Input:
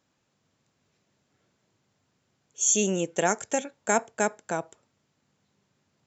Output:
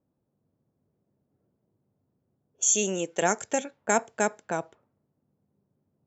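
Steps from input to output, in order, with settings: low-pass opened by the level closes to 520 Hz, open at -25 dBFS; 2.73–3.22 HPF 290 Hz 6 dB/oct

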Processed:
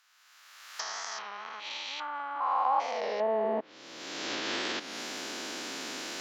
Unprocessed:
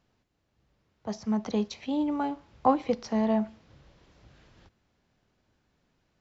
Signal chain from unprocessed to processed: stepped spectrum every 0.4 s; recorder AGC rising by 31 dB/s; treble ducked by the level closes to 1500 Hz, closed at -27.5 dBFS; tilt +4 dB/oct; high-pass sweep 1300 Hz -> 290 Hz, 2.3–3.75; record warp 33 1/3 rpm, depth 100 cents; gain +5.5 dB

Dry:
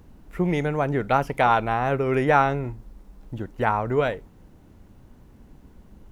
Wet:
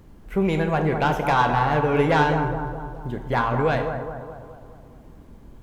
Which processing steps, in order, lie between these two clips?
soft clip -14 dBFS, distortion -15 dB; on a send: analogue delay 0.228 s, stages 2048, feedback 53%, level -7 dB; on the sum: two-slope reverb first 0.75 s, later 2.6 s, DRR 5.5 dB; speed mistake 44.1 kHz file played as 48 kHz; gain +1 dB

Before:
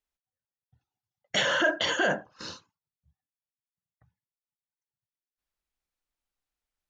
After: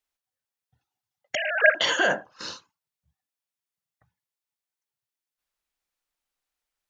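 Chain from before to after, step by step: 1.35–1.75 sine-wave speech; low shelf 290 Hz -10 dB; gain +4.5 dB

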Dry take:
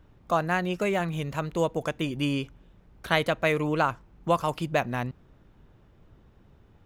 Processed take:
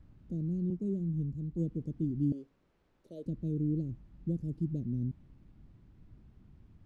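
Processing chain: inverse Chebyshev band-stop 860–2000 Hz, stop band 70 dB; bell 5000 Hz -13 dB 2.2 oct; 2.32–3.26 resonant high-pass 590 Hz, resonance Q 4.9; added noise pink -71 dBFS; tape spacing loss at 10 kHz 25 dB; 0.7–1.7 three-band expander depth 100%

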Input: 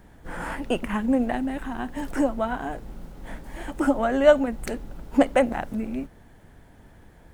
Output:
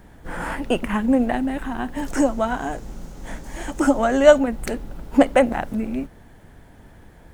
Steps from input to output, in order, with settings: 2.06–4.38 bell 6500 Hz +10.5 dB 0.75 oct; gain +4 dB

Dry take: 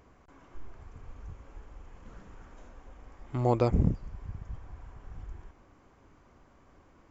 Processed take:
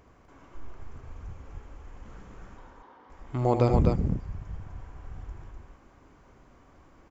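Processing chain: 2.57–3.1 speaker cabinet 290–4300 Hz, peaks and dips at 640 Hz -8 dB, 940 Hz +9 dB, 2500 Hz -9 dB; loudspeakers at several distances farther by 27 m -9 dB, 86 m -4 dB; gain +1.5 dB

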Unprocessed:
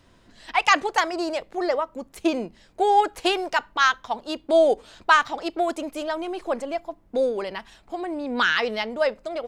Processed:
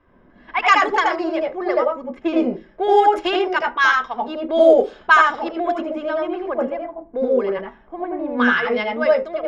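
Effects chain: 6.48–8.76 bell 4900 Hz -7.5 dB 1.9 oct; reverb RT60 0.25 s, pre-delay 77 ms, DRR 1 dB; low-pass opened by the level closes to 1500 Hz, open at -5 dBFS; low shelf 73 Hz +6.5 dB; gain -4.5 dB

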